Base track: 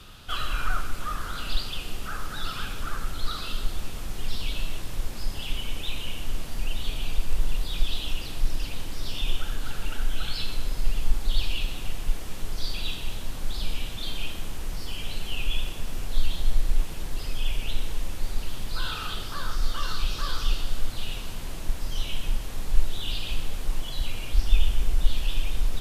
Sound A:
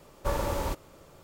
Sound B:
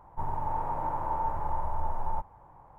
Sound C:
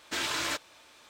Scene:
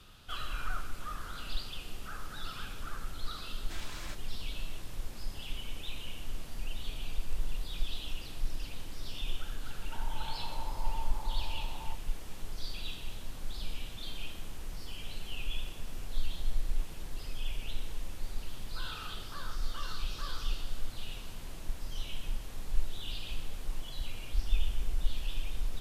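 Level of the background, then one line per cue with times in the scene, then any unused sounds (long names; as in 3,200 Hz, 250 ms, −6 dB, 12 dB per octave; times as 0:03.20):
base track −9 dB
0:03.58: mix in C −15 dB
0:09.74: mix in B −12.5 dB
not used: A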